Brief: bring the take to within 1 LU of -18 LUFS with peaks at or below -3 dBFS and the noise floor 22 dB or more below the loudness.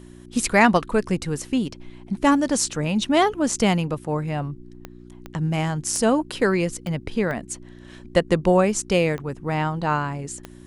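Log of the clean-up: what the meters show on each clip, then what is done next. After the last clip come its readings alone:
clicks found 7; hum 60 Hz; highest harmonic 360 Hz; hum level -44 dBFS; loudness -22.5 LUFS; peak level -4.0 dBFS; loudness target -18.0 LUFS
-> de-click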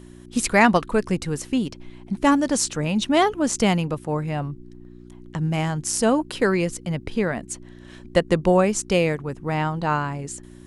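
clicks found 0; hum 60 Hz; highest harmonic 360 Hz; hum level -44 dBFS
-> de-hum 60 Hz, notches 6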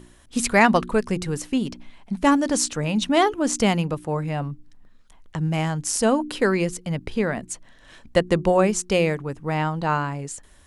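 hum not found; loudness -22.5 LUFS; peak level -4.0 dBFS; loudness target -18.0 LUFS
-> trim +4.5 dB; peak limiter -3 dBFS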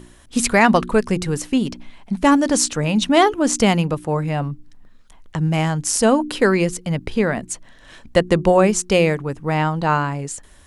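loudness -18.5 LUFS; peak level -3.0 dBFS; noise floor -47 dBFS

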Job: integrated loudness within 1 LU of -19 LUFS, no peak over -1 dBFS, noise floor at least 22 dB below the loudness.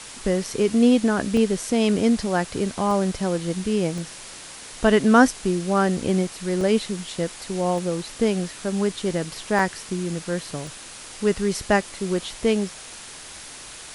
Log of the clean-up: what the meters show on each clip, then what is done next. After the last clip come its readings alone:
dropouts 7; longest dropout 1.1 ms; noise floor -40 dBFS; noise floor target -45 dBFS; loudness -23.0 LUFS; peak level -1.5 dBFS; loudness target -19.0 LUFS
-> interpolate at 1.37/2.91/3.98/6.61/7.78/9.59/10.67 s, 1.1 ms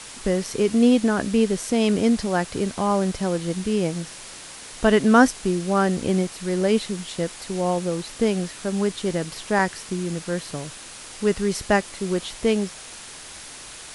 dropouts 0; noise floor -40 dBFS; noise floor target -45 dBFS
-> noise reduction 6 dB, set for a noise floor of -40 dBFS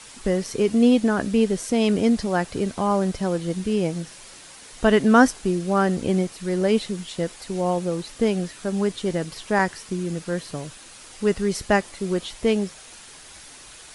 noise floor -45 dBFS; loudness -23.0 LUFS; peak level -1.5 dBFS; loudness target -19.0 LUFS
-> trim +4 dB; peak limiter -1 dBFS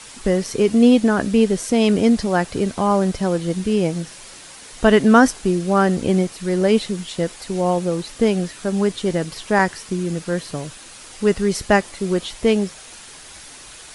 loudness -19.0 LUFS; peak level -1.0 dBFS; noise floor -41 dBFS

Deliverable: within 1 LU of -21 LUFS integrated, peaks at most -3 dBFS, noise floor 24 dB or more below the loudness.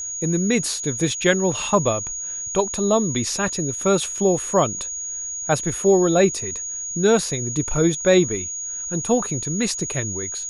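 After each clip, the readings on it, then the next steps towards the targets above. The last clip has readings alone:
steady tone 6.7 kHz; tone level -27 dBFS; loudness -21.0 LUFS; peak level -4.0 dBFS; loudness target -21.0 LUFS
-> band-stop 6.7 kHz, Q 30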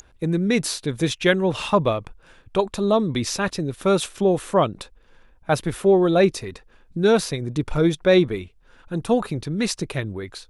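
steady tone not found; loudness -22.0 LUFS; peak level -4.5 dBFS; loudness target -21.0 LUFS
-> trim +1 dB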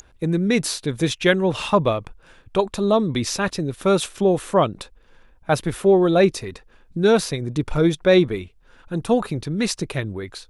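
loudness -21.0 LUFS; peak level -3.5 dBFS; noise floor -54 dBFS

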